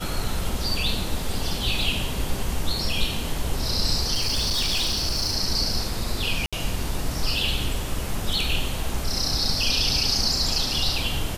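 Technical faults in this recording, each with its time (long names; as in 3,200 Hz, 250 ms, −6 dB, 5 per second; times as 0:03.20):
0:04.14–0:05.36: clipping −19.5 dBFS
0:06.46–0:06.53: drop-out 66 ms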